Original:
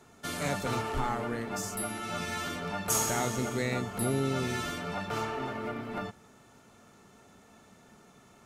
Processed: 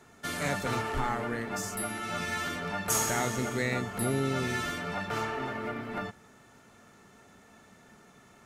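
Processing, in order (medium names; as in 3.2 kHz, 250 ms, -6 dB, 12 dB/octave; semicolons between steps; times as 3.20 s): peaking EQ 1.8 kHz +5 dB 0.6 oct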